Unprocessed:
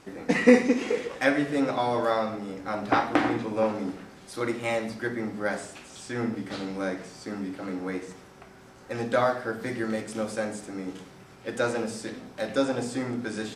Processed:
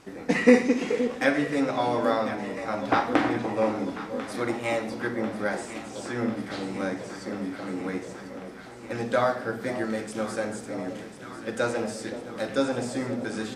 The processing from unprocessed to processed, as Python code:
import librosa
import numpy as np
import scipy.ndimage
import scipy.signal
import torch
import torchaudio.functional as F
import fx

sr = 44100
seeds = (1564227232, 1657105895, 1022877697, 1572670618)

y = fx.echo_alternate(x, sr, ms=522, hz=940.0, feedback_pct=84, wet_db=-11.0)